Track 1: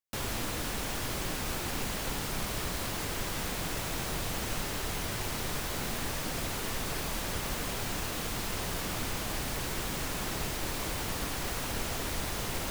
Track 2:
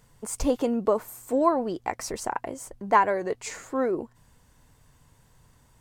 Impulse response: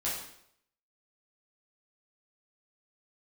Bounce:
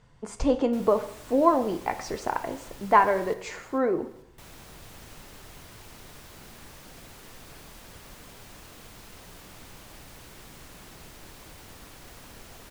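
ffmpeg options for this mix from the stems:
-filter_complex "[0:a]adelay=600,volume=-13.5dB,asplit=3[a][b][c];[a]atrim=end=3.34,asetpts=PTS-STARTPTS,afade=t=out:st=3.336:d=0.004:c=hsin[d];[b]atrim=start=3.34:end=4.38,asetpts=PTS-STARTPTS,volume=0[e];[c]atrim=start=4.38,asetpts=PTS-STARTPTS,afade=t=in:d=0.004:c=hsin[f];[d][e][f]concat=n=3:v=0:a=1,asplit=2[g][h];[h]volume=-9.5dB[i];[1:a]lowpass=4.4k,volume=-0.5dB,asplit=2[j][k];[k]volume=-12.5dB[l];[2:a]atrim=start_sample=2205[m];[l][m]afir=irnorm=-1:irlink=0[n];[i]aecho=0:1:443|886|1329|1772|2215|2658:1|0.44|0.194|0.0852|0.0375|0.0165[o];[g][j][n][o]amix=inputs=4:normalize=0"

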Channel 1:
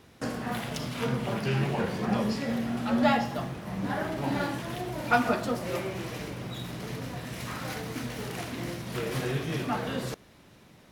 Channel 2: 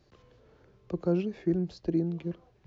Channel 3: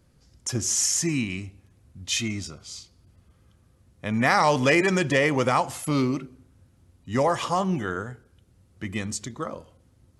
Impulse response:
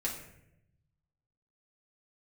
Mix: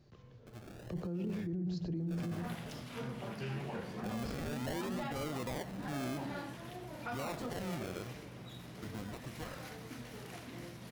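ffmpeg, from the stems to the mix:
-filter_complex "[0:a]adelay=1950,volume=-12dB[a];[1:a]equalizer=f=140:t=o:w=1.3:g=10.5,dynaudnorm=f=110:g=11:m=3.5dB,volume=-4.5dB,asplit=3[b][c][d];[c]volume=-17dB[e];[d]volume=-10.5dB[f];[2:a]acrossover=split=400[g][h];[h]acompressor=threshold=-33dB:ratio=1.5[i];[g][i]amix=inputs=2:normalize=0,acrusher=samples=36:mix=1:aa=0.000001:lfo=1:lforange=21.6:lforate=0.53,volume=-12.5dB,afade=t=in:st=1.15:d=0.29:silence=0.281838[j];[3:a]atrim=start_sample=2205[k];[e][k]afir=irnorm=-1:irlink=0[l];[f]aecho=0:1:116:1[m];[a][b][j][l][m]amix=inputs=5:normalize=0,alimiter=level_in=7.5dB:limit=-24dB:level=0:latency=1:release=14,volume=-7.5dB"

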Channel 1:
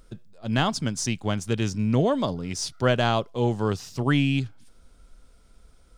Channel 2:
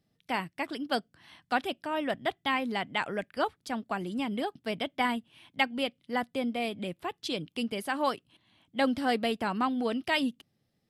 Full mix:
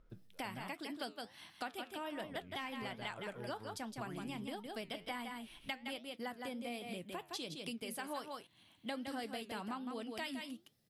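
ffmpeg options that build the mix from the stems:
-filter_complex "[0:a]lowpass=2k,acompressor=threshold=-29dB:ratio=2.5,volume=-8.5dB,asplit=3[a][b][c];[a]atrim=end=0.68,asetpts=PTS-STARTPTS,afade=t=out:st=0.676:d=0.004:c=hsin[d];[b]atrim=start=0.68:end=2.16,asetpts=PTS-STARTPTS,volume=0[e];[c]atrim=start=2.16,asetpts=PTS-STARTPTS,afade=t=in:d=0.004:c=hsin[f];[d][e][f]concat=n=3:v=0:a=1[g];[1:a]adelay=100,volume=1dB,asplit=2[h][i];[i]volume=-7.5dB,aecho=0:1:163:1[j];[g][h][j]amix=inputs=3:normalize=0,highshelf=f=5.5k:g=11.5,flanger=delay=4.7:depth=6.3:regen=-81:speed=1.3:shape=triangular,acompressor=threshold=-42dB:ratio=4"

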